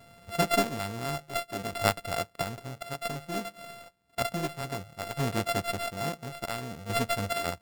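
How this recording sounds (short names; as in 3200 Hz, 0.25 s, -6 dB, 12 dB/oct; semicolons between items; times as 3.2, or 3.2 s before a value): a buzz of ramps at a fixed pitch in blocks of 64 samples; chopped level 0.58 Hz, depth 60%, duty 40%; aliases and images of a low sample rate 6200 Hz, jitter 0%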